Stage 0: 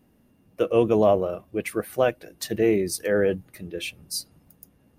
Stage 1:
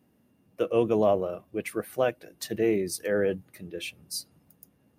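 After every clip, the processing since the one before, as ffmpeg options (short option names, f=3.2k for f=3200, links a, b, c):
-af "highpass=87,volume=-4dB"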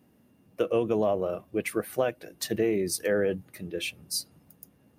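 -af "acompressor=threshold=-25dB:ratio=6,volume=3.5dB"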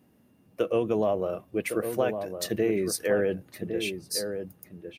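-filter_complex "[0:a]asplit=2[a][b];[b]adelay=1108,volume=-7dB,highshelf=f=4k:g=-24.9[c];[a][c]amix=inputs=2:normalize=0"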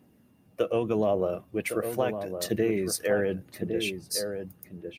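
-af "aphaser=in_gain=1:out_gain=1:delay=1.7:decay=0.26:speed=0.83:type=triangular"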